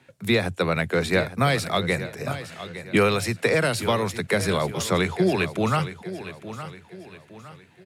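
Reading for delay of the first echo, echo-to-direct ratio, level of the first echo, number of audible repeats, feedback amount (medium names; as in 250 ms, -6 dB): 863 ms, -12.5 dB, -13.0 dB, 3, 39%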